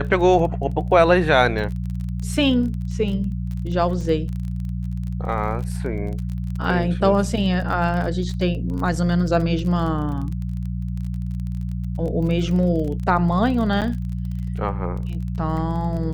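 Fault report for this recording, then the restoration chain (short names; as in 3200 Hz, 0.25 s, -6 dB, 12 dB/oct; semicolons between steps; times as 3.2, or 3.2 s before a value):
crackle 26/s -29 dBFS
hum 60 Hz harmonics 3 -26 dBFS
13.81–13.82 gap 8 ms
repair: de-click; de-hum 60 Hz, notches 3; interpolate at 13.81, 8 ms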